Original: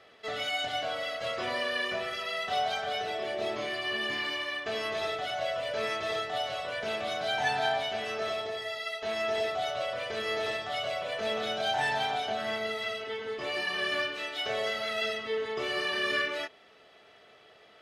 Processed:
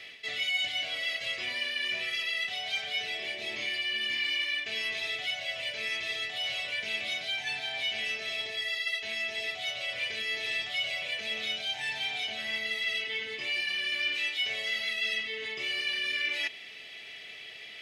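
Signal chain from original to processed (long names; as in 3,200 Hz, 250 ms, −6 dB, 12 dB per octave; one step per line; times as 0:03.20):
parametric band 550 Hz −5 dB 1.2 octaves
reversed playback
downward compressor 6 to 1, threshold −44 dBFS, peak gain reduction 17.5 dB
reversed playback
high shelf with overshoot 1,700 Hz +9 dB, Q 3
level +3.5 dB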